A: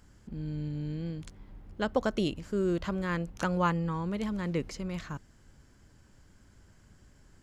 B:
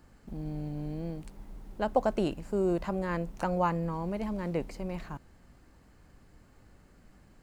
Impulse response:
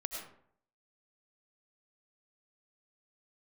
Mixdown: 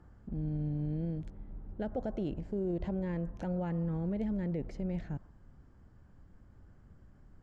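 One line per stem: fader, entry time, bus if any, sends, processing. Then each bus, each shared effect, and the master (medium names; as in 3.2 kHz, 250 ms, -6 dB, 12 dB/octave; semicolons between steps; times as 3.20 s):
-7.5 dB, 0.00 s, no send, low-pass 1.6 kHz 6 dB/octave; bass shelf 250 Hz +9.5 dB
-1.5 dB, 0.00 s, send -22 dB, steep low-pass 1.7 kHz 36 dB/octave; auto duck -7 dB, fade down 0.30 s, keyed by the first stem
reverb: on, RT60 0.65 s, pre-delay 60 ms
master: peak limiter -26.5 dBFS, peak gain reduction 10.5 dB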